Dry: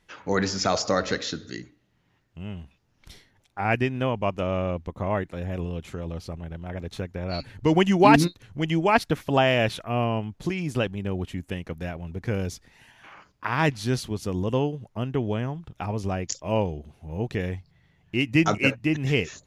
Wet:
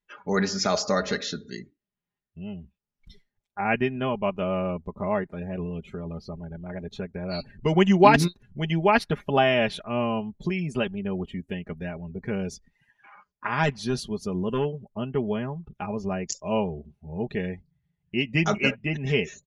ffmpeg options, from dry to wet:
-filter_complex "[0:a]asettb=1/sr,asplit=3[s0][s1][s2];[s0]atrim=end=13.634[s3];[s1]atrim=start=13.63:end=14.65,asetpts=PTS-STARTPTS,afade=t=in:d=0.004:c=qsin,afade=t=out:st=1.016:d=0.004:c=qsin,asoftclip=type=hard:threshold=0.133[s4];[s2]atrim=start=14.646[s5];[s3][s4]acrossfade=d=0.004:c1=hsin:c2=qsin[s6];[s6][s5]acrossfade=d=0.004:c1=qsin:c2=hsin,afftdn=nr=22:nf=-45,aecho=1:1:4.9:0.67,volume=0.794"

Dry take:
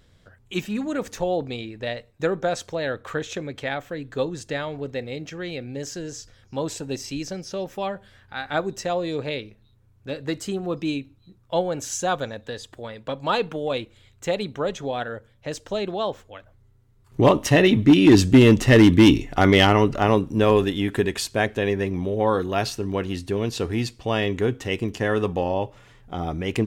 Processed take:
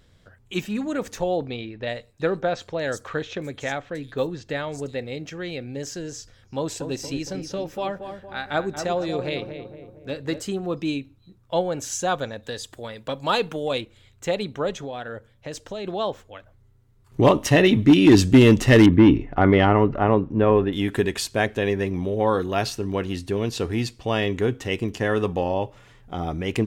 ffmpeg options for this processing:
-filter_complex "[0:a]asettb=1/sr,asplit=3[s0][s1][s2];[s0]atrim=end=1.464[s3];[s1]atrim=start=1.46:end=4.98,asetpts=PTS-STARTPTS,afade=t=in:d=0.004:c=qsin,afade=t=out:st=3.516:d=0.004:c=qsin,acrossover=split=5400[s4][s5];[s5]adelay=370[s6];[s4][s6]amix=inputs=2:normalize=0,atrim=end_sample=155232[s7];[s2]atrim=start=4.976[s8];[s3][s7]acrossfade=d=0.004:c1=hsin:c2=qsin[s9];[s9][s8]acrossfade=d=0.004:c1=qsin:c2=hsin,asettb=1/sr,asplit=3[s10][s11][s12];[s10]atrim=end=6.574[s13];[s11]atrim=start=6.57:end=10.42,asetpts=PTS-STARTPTS,afade=t=in:d=0.004:c=qsin,afade=t=out:st=3.846:d=0.004:c=qsin,asplit=2[s14][s15];[s15]adelay=231,lowpass=f=1400:p=1,volume=0.422,asplit=2[s16][s17];[s17]adelay=231,lowpass=f=1400:p=1,volume=0.52,asplit=2[s18][s19];[s19]adelay=231,lowpass=f=1400:p=1,volume=0.52,asplit=2[s20][s21];[s21]adelay=231,lowpass=f=1400:p=1,volume=0.52,asplit=2[s22][s23];[s23]adelay=231,lowpass=f=1400:p=1,volume=0.52,asplit=2[s24][s25];[s25]adelay=231,lowpass=f=1400:p=1,volume=0.52[s26];[s14][s16][s18][s20][s22][s24][s26]amix=inputs=7:normalize=0,atrim=end_sample=169785[s27];[s12]atrim=start=10.416[s28];[s13][s27]acrossfade=d=0.004:c1=hsin:c2=qsin[s29];[s29][s28]acrossfade=d=0.004:c1=qsin:c2=hsin,asettb=1/sr,asplit=3[s30][s31][s32];[s30]atrim=end=12.434[s33];[s31]atrim=start=12.43:end=13.81,asetpts=PTS-STARTPTS,afade=t=in:d=0.004:c=qsin,afade=t=out:st=1.376:d=0.004:c=qsin,highshelf=f=5100:g=9.5[s34];[s32]atrim=start=13.806[s35];[s33][s34]acrossfade=d=0.004:c1=hsin:c2=qsin[s36];[s36][s35]acrossfade=d=0.004:c1=qsin:c2=hsin,asplit=3[s37][s38][s39];[s37]afade=t=out:st=14.79:d=0.02[s40];[s38]acompressor=threshold=0.0355:ratio=4:attack=3.2:release=140:knee=1:detection=peak,afade=t=in:st=14.79:d=0.02,afade=t=out:st=15.84:d=0.02[s41];[s39]afade=t=in:st=15.84:d=0.02[s42];[s40][s41][s42]amix=inputs=3:normalize=0,asettb=1/sr,asplit=3[s43][s44][s45];[s43]atrim=end=18.864[s46];[s44]atrim=start=18.86:end=20.73,asetpts=PTS-STARTPTS,afade=t=in:d=0.004:c=qsin,afade=t=out:st=1.866:d=0.004:c=qsin,lowpass=1700[s47];[s45]atrim=start=20.726[s48];[s46][s47]acrossfade=d=0.004:c1=hsin:c2=qsin[s49];[s49][s48]acrossfade=d=0.004:c1=qsin:c2=hsin"

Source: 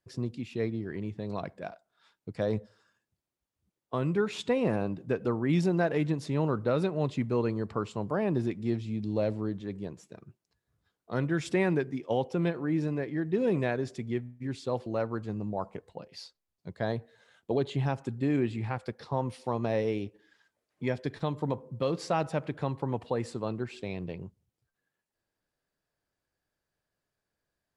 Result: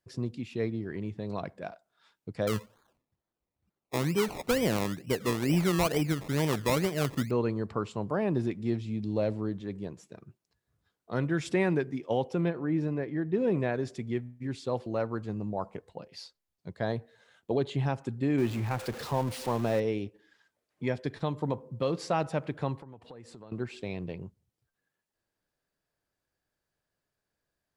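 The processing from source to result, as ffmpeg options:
-filter_complex "[0:a]asettb=1/sr,asplit=3[s0][s1][s2];[s0]atrim=end=2.474[s3];[s1]atrim=start=2.47:end=7.31,asetpts=PTS-STARTPTS,afade=t=in:d=0.004:c=qsin,afade=t=out:st=4.836:d=0.004:c=qsin,acrusher=samples=23:mix=1:aa=0.000001:lfo=1:lforange=13.8:lforate=2.2[s4];[s2]atrim=start=7.306[s5];[s3][s4]acrossfade=d=0.004:c1=hsin:c2=qsin[s6];[s6][s5]acrossfade=d=0.004:c1=qsin:c2=hsin,asettb=1/sr,asplit=3[s7][s8][s9];[s7]atrim=end=12.414[s10];[s8]atrim=start=12.41:end=13.74,asetpts=PTS-STARTPTS,afade=t=in:d=0.004:c=qsin,afade=t=out:st=1.326:d=0.004:c=qsin,highshelf=f=3300:g=-8.5[s11];[s9]atrim=start=13.736[s12];[s10][s11]acrossfade=d=0.004:c1=hsin:c2=qsin[s13];[s13][s12]acrossfade=d=0.004:c1=qsin:c2=hsin,asettb=1/sr,asplit=3[s14][s15][s16];[s14]atrim=end=18.384[s17];[s15]atrim=start=18.38:end=19.8,asetpts=PTS-STARTPTS,afade=t=in:d=0.004:c=qsin,afade=t=out:st=1.416:d=0.004:c=qsin,aeval=exprs='val(0)+0.5*0.015*sgn(val(0))':c=same[s18];[s16]atrim=start=19.796[s19];[s17][s18]acrossfade=d=0.004:c1=hsin:c2=qsin[s20];[s20][s19]acrossfade=d=0.004:c1=qsin:c2=hsin,asettb=1/sr,asplit=3[s21][s22][s23];[s21]atrim=end=22.784[s24];[s22]atrim=start=22.78:end=23.52,asetpts=PTS-STARTPTS,afade=t=in:d=0.004:c=qsin,afade=t=out:st=0.736:d=0.004:c=qsin,acompressor=threshold=0.00447:ratio=4:attack=3.2:release=140:knee=1:detection=peak[s25];[s23]atrim=start=23.516[s26];[s24][s25]acrossfade=d=0.004:c1=hsin:c2=qsin[s27];[s27][s26]acrossfade=d=0.004:c1=qsin:c2=hsin"

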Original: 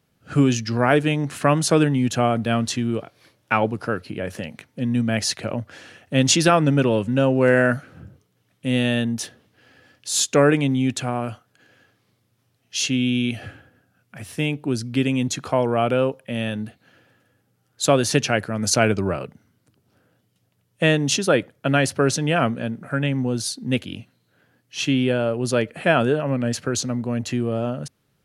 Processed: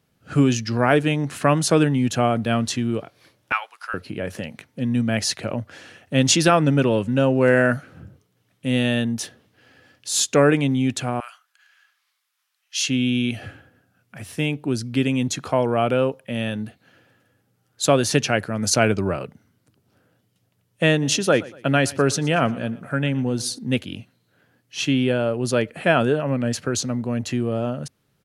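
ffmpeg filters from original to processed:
-filter_complex "[0:a]asettb=1/sr,asplit=3[s0][s1][s2];[s0]atrim=end=3.524[s3];[s1]atrim=start=3.52:end=3.94,asetpts=PTS-STARTPTS,afade=t=in:d=0.004:c=qsin,afade=t=out:st=0.416:d=0.004:c=qsin,highpass=f=1100:w=0.5412,highpass=f=1100:w=1.3066[s4];[s2]atrim=start=3.936[s5];[s3][s4]acrossfade=d=0.004:c1=hsin:c2=qsin[s6];[s6][s5]acrossfade=d=0.004:c1=qsin:c2=hsin,asettb=1/sr,asplit=3[s7][s8][s9];[s7]atrim=end=11.204[s10];[s8]atrim=start=11.2:end=12.88,asetpts=PTS-STARTPTS,afade=t=in:d=0.004:c=qsin,afade=t=out:st=1.676:d=0.004:c=qsin,highpass=f=1100:w=0.5412,highpass=f=1100:w=1.3066[s11];[s9]atrim=start=12.876[s12];[s10][s11]acrossfade=d=0.004:c1=hsin:c2=qsin[s13];[s13][s12]acrossfade=d=0.004:c1=qsin:c2=hsin,asplit=3[s14][s15][s16];[s14]afade=t=out:st=21.01:d=0.02[s17];[s15]aecho=1:1:117|234|351:0.0944|0.0387|0.0159,afade=t=in:st=21.01:d=0.02,afade=t=out:st=23.57:d=0.02[s18];[s16]afade=t=in:st=23.57:d=0.02[s19];[s17][s18][s19]amix=inputs=3:normalize=0"

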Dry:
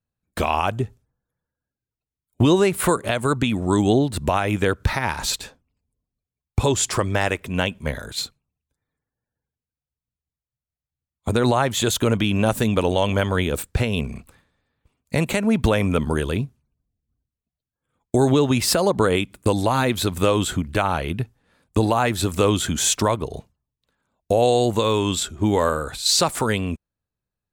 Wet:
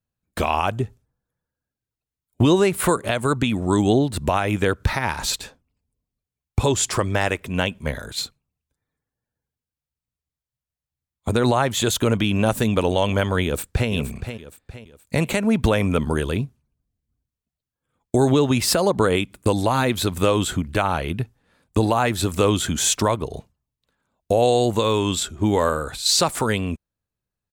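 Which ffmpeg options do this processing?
-filter_complex "[0:a]asplit=2[s0][s1];[s1]afade=t=in:st=13.44:d=0.01,afade=t=out:st=13.9:d=0.01,aecho=0:1:470|940|1410|1880:0.334965|0.133986|0.0535945|0.0214378[s2];[s0][s2]amix=inputs=2:normalize=0"

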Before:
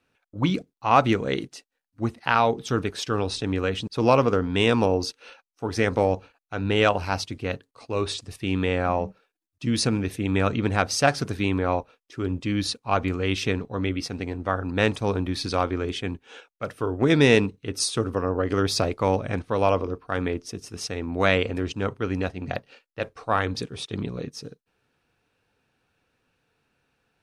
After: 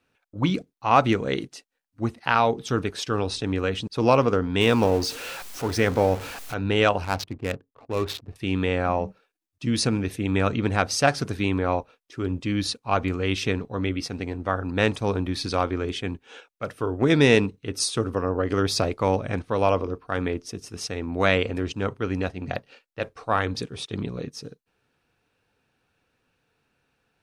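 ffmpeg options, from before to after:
-filter_complex "[0:a]asettb=1/sr,asplit=3[s0][s1][s2];[s0]atrim=end=4.614[s3];[s1]atrim=start=4.61:end=6.54,asetpts=PTS-STARTPTS,afade=t=in:d=0.004:c=qsin,afade=t=out:st=1.926:d=0.004:c=qsin,aeval=exprs='val(0)+0.5*0.0282*sgn(val(0))':c=same[s4];[s2]atrim=start=6.536[s5];[s3][s4]acrossfade=d=0.004:c1=hsin:c2=qsin[s6];[s6][s5]acrossfade=d=0.004:c1=qsin:c2=hsin,asettb=1/sr,asplit=3[s7][s8][s9];[s7]atrim=end=7.044[s10];[s8]atrim=start=7.04:end=8.36,asetpts=PTS-STARTPTS,afade=t=in:d=0.004:c=qsin,afade=t=out:st=1.316:d=0.004:c=qsin,adynamicsmooth=sensitivity=7.5:basefreq=510[s11];[s9]atrim=start=8.356[s12];[s10][s11]acrossfade=d=0.004:c1=hsin:c2=qsin[s13];[s13][s12]acrossfade=d=0.004:c1=qsin:c2=hsin"

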